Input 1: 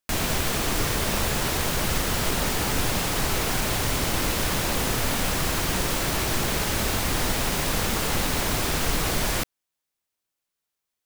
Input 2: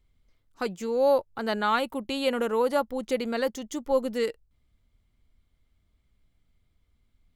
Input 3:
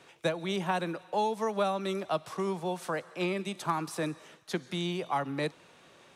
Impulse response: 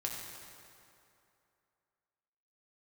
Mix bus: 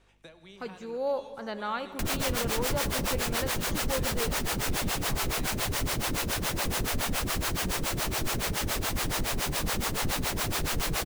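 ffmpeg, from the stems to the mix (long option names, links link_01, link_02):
-filter_complex "[0:a]acrossover=split=430[link_01][link_02];[link_01]aeval=exprs='val(0)*(1-1/2+1/2*cos(2*PI*7.1*n/s))':channel_layout=same[link_03];[link_02]aeval=exprs='val(0)*(1-1/2-1/2*cos(2*PI*7.1*n/s))':channel_layout=same[link_04];[link_03][link_04]amix=inputs=2:normalize=0,adelay=1900,volume=-1dB,asplit=2[link_05][link_06];[link_06]volume=-20.5dB[link_07];[1:a]acrossover=split=6200[link_08][link_09];[link_09]acompressor=threshold=-59dB:ratio=4:attack=1:release=60[link_10];[link_08][link_10]amix=inputs=2:normalize=0,aeval=exprs='val(0)+0.00141*(sin(2*PI*50*n/s)+sin(2*PI*2*50*n/s)/2+sin(2*PI*3*50*n/s)/3+sin(2*PI*4*50*n/s)/4+sin(2*PI*5*50*n/s)/5)':channel_layout=same,volume=-10.5dB,asplit=2[link_11][link_12];[link_12]volume=-8.5dB[link_13];[2:a]acrossover=split=1900|4700[link_14][link_15][link_16];[link_14]acompressor=threshold=-41dB:ratio=4[link_17];[link_15]acompressor=threshold=-43dB:ratio=4[link_18];[link_16]acompressor=threshold=-58dB:ratio=4[link_19];[link_17][link_18][link_19]amix=inputs=3:normalize=0,volume=-13dB,asplit=2[link_20][link_21];[link_21]volume=-7.5dB[link_22];[3:a]atrim=start_sample=2205[link_23];[link_07][link_13][link_22]amix=inputs=3:normalize=0[link_24];[link_24][link_23]afir=irnorm=-1:irlink=0[link_25];[link_05][link_11][link_20][link_25]amix=inputs=4:normalize=0,volume=21.5dB,asoftclip=hard,volume=-21.5dB"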